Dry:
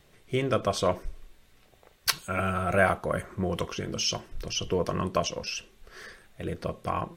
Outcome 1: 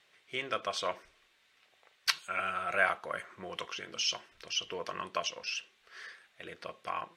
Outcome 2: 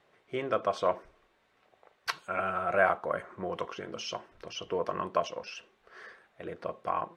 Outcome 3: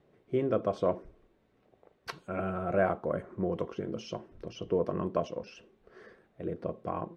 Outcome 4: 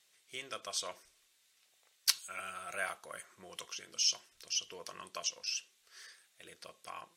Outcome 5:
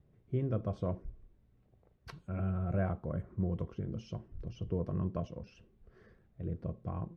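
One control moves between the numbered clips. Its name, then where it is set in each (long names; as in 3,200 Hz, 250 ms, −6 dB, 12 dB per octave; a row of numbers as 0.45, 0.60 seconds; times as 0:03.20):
resonant band-pass, frequency: 2,500, 950, 350, 7,400, 100 Hertz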